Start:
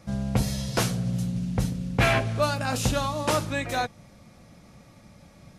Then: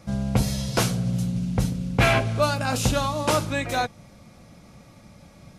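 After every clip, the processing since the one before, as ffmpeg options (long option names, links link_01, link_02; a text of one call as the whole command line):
ffmpeg -i in.wav -af "bandreject=frequency=1800:width=15,volume=2.5dB" out.wav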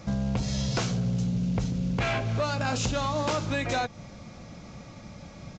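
ffmpeg -i in.wav -af "acompressor=threshold=-27dB:ratio=6,aresample=16000,asoftclip=type=tanh:threshold=-24.5dB,aresample=44100,volume=4.5dB" out.wav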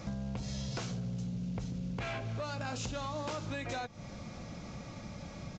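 ffmpeg -i in.wav -af "acompressor=threshold=-39dB:ratio=3" out.wav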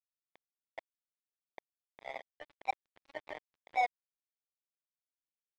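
ffmpeg -i in.wav -af "flanger=delay=3.6:depth=2.1:regen=53:speed=1.6:shape=sinusoidal,asuperpass=centerf=700:order=4:qfactor=3.8,acrusher=bits=6:mix=0:aa=0.5,volume=16dB" out.wav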